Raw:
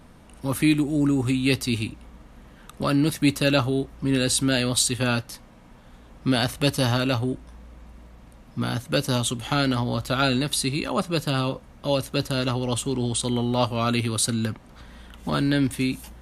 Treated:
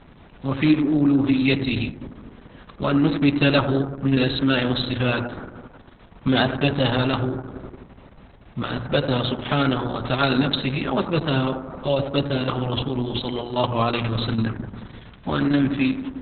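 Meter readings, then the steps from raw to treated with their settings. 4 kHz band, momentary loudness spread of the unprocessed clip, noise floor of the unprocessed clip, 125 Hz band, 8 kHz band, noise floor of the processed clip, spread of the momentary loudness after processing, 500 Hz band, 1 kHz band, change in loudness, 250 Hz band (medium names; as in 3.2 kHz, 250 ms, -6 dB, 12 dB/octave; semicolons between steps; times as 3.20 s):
0.0 dB, 9 LU, -49 dBFS, +1.5 dB, under -40 dB, -48 dBFS, 14 LU, +2.5 dB, +3.0 dB, +1.5 dB, +3.0 dB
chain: hum notches 60/120/180/240/300/360/420/480 Hz; on a send: bucket-brigade echo 88 ms, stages 1024, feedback 71%, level -10 dB; on the sum: trim +3.5 dB; Opus 6 kbps 48 kHz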